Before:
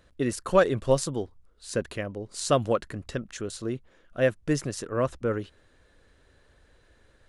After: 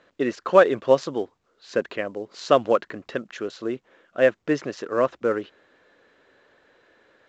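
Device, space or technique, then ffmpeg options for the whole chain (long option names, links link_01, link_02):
telephone: -af "highpass=300,lowpass=3100,volume=6dB" -ar 16000 -c:a pcm_mulaw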